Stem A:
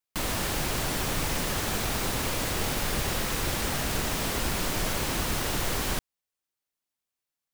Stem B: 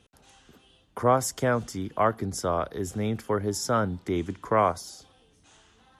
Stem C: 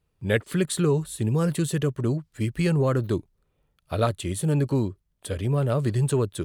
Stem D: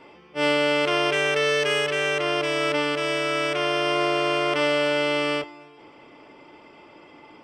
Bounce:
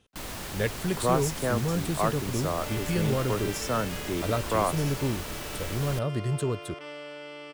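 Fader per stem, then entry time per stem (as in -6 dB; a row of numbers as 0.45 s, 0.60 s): -8.0 dB, -4.0 dB, -5.5 dB, -19.0 dB; 0.00 s, 0.00 s, 0.30 s, 2.25 s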